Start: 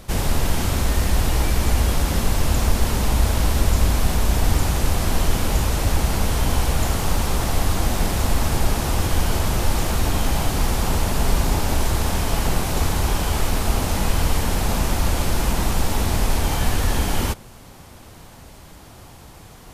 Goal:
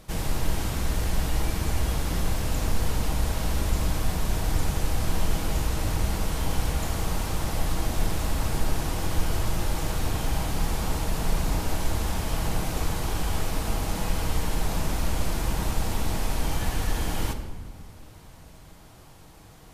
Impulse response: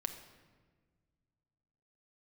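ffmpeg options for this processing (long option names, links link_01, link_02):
-filter_complex "[1:a]atrim=start_sample=2205,asetrate=39690,aresample=44100[link_01];[0:a][link_01]afir=irnorm=-1:irlink=0,volume=-7.5dB"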